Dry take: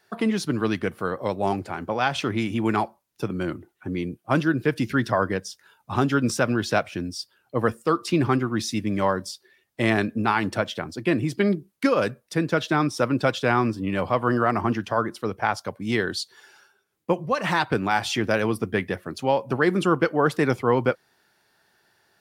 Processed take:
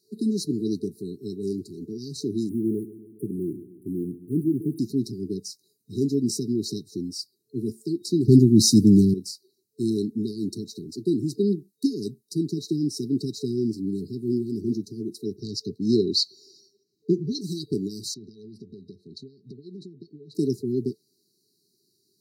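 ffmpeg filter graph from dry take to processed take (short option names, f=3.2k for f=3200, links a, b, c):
-filter_complex "[0:a]asettb=1/sr,asplit=3[a][b][c];[a]atrim=end=2.494[d];[b]atrim=start=2.49:end=4.79,asetpts=PTS-STARTPTS,afade=t=in:d=0.004:c=qsin,afade=t=out:st=2.296:d=0.004:c=qsin,acrusher=bits=7:mix=0:aa=0.5,asuperstop=centerf=4900:order=12:qfactor=0.73,aecho=1:1:137|274|411|548|685|822:0.158|0.0919|0.0533|0.0309|0.0179|0.0104,atrim=end_sample=101430[e];[c]atrim=start=4.786[f];[d][e]acrossfade=d=0.004:c1=hsin:c2=qsin[g];[g][f]acrossfade=d=0.004:c1=qsin:c2=hsin,asettb=1/sr,asplit=3[h][i][j];[h]atrim=end=8.284[k];[i]atrim=start=8.28:end=9.14,asetpts=PTS-STARTPTS,afade=t=in:d=0.004:c=qsin,afade=t=out:st=0.856:d=0.004:c=qsin,bass=f=250:g=11,treble=f=4k:g=6,acontrast=88[l];[j]atrim=start=9.136[m];[k][l]acrossfade=d=0.004:c1=hsin:c2=qsin[n];[n][m]acrossfade=d=0.004:c1=qsin:c2=hsin,asettb=1/sr,asplit=3[o][p][q];[o]atrim=end=15.364[r];[p]atrim=start=15.36:end=17.41,asetpts=PTS-STARTPTS,afade=t=in:d=0.004:c=qsin,afade=t=out:st=2.046:d=0.004:c=qsin,highshelf=f=6.7k:t=q:w=1.5:g=-11.5,acontrast=53[s];[q]atrim=start=17.406[t];[r][s]acrossfade=d=0.004:c1=hsin:c2=qsin[u];[u][t]acrossfade=d=0.004:c1=qsin:c2=hsin,asettb=1/sr,asplit=3[v][w][x];[v]atrim=end=18.144[y];[w]atrim=start=18.14:end=20.35,asetpts=PTS-STARTPTS,afade=t=in:d=0.004:c=qsin,afade=t=out:st=2.206:d=0.004:c=qsin,equalizer=f=310:t=o:w=0.53:g=-9,acompressor=threshold=-34dB:ratio=16:attack=3.2:release=140:knee=1:detection=peak,lowpass=f=3.4k:t=q:w=2.5[z];[x]atrim=start=20.346[aa];[y][z]acrossfade=d=0.004:c1=hsin:c2=qsin[ab];[ab][aa]acrossfade=d=0.004:c1=qsin:c2=hsin,afftfilt=real='re*(1-between(b*sr/4096,440,3800))':imag='im*(1-between(b*sr/4096,440,3800))':win_size=4096:overlap=0.75,highpass=150"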